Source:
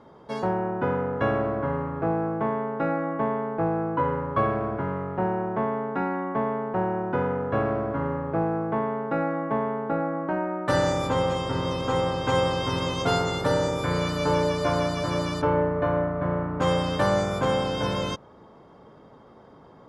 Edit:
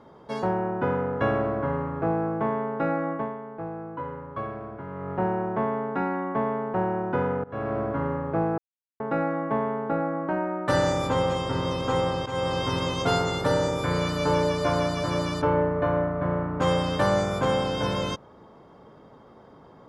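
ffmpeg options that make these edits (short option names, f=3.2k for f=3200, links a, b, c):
-filter_complex "[0:a]asplit=7[a][b][c][d][e][f][g];[a]atrim=end=3.42,asetpts=PTS-STARTPTS,afade=t=out:st=3.12:d=0.3:c=qua:silence=0.334965[h];[b]atrim=start=3.42:end=4.81,asetpts=PTS-STARTPTS,volume=-9.5dB[i];[c]atrim=start=4.81:end=7.44,asetpts=PTS-STARTPTS,afade=t=in:d=0.3:c=qua:silence=0.334965,afade=t=out:st=2.626:d=0.004:c=hsin:silence=0.0794328[j];[d]atrim=start=7.44:end=8.58,asetpts=PTS-STARTPTS,afade=t=in:d=0.37:silence=0.0794328,afade=t=out:st=1.136:d=0.004:c=hsin[k];[e]atrim=start=8.58:end=9,asetpts=PTS-STARTPTS,volume=0[l];[f]atrim=start=9:end=12.26,asetpts=PTS-STARTPTS,afade=t=in:d=0.004:c=hsin,afade=t=out:st=3.256:d=0.004:c=hsin:silence=0.223872[m];[g]atrim=start=12.26,asetpts=PTS-STARTPTS,afade=t=in:d=0.31:silence=0.223872[n];[h][i][j][k][l][m][n]concat=n=7:v=0:a=1"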